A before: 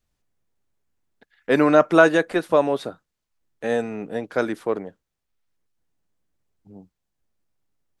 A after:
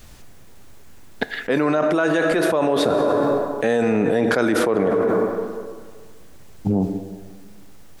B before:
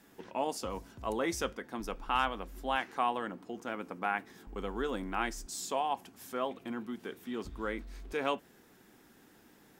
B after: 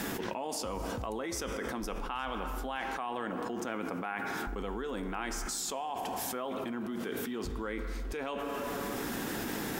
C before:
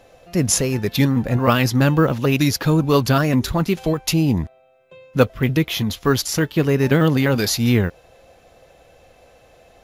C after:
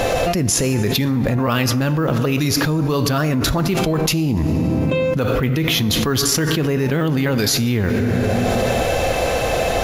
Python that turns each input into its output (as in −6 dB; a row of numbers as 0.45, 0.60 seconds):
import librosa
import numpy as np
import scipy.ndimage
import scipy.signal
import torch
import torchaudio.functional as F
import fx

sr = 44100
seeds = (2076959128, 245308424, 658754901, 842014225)

y = fx.rev_plate(x, sr, seeds[0], rt60_s=1.7, hf_ratio=0.6, predelay_ms=0, drr_db=12.5)
y = fx.env_flatten(y, sr, amount_pct=100)
y = y * librosa.db_to_amplitude(-8.5)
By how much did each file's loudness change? +0.5, 0.0, +0.5 LU